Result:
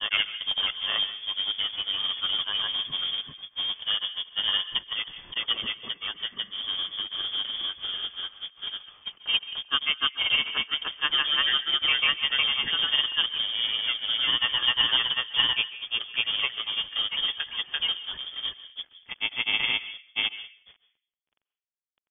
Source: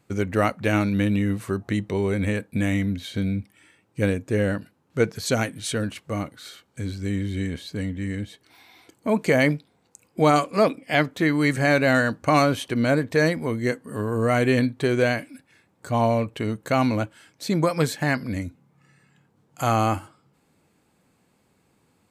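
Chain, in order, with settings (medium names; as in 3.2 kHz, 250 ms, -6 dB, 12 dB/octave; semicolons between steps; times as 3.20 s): hum notches 50/100 Hz; rotary cabinet horn 6.3 Hz; companded quantiser 4-bit; granulator, spray 659 ms; plate-style reverb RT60 0.52 s, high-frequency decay 0.3×, pre-delay 120 ms, DRR 14 dB; frequency inversion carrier 3.4 kHz; trim -1.5 dB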